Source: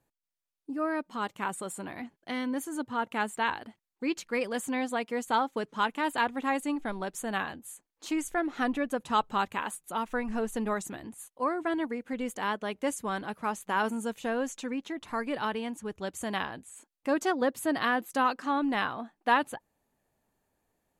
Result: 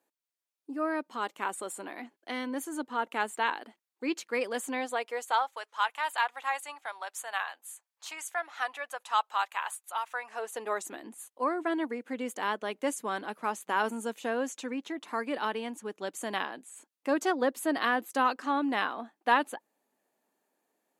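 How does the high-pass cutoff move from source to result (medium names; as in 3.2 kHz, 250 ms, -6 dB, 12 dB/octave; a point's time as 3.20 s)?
high-pass 24 dB/octave
4.69 s 270 Hz
5.59 s 720 Hz
10.12 s 720 Hz
11.07 s 240 Hz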